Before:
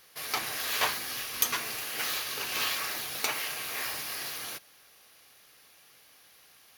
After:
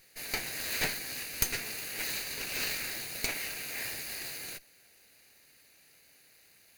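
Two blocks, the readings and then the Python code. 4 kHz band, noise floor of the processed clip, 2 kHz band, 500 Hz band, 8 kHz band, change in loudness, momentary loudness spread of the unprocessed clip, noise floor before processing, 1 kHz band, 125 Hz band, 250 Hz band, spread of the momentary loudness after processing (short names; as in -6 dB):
-4.5 dB, -62 dBFS, -2.5 dB, -2.5 dB, -2.0 dB, -3.0 dB, 6 LU, -59 dBFS, -10.5 dB, +4.5 dB, +1.0 dB, 6 LU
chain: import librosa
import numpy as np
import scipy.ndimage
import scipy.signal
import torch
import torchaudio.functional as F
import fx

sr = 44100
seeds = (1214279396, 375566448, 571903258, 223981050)

y = fx.lower_of_two(x, sr, delay_ms=0.45)
y = y * librosa.db_to_amplitude(-1.5)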